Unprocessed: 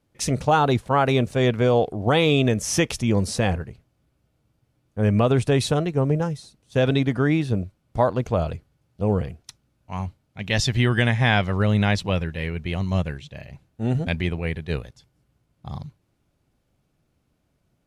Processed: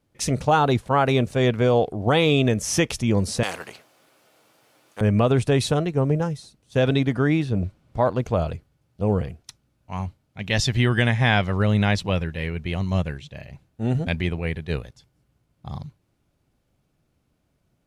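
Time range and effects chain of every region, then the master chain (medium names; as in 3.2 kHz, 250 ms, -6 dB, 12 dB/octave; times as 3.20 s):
3.43–5.01 s: high-pass 550 Hz + spectrum-flattening compressor 2:1
7.44–8.08 s: treble shelf 8.5 kHz -10 dB + transient shaper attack -2 dB, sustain +8 dB
whole clip: none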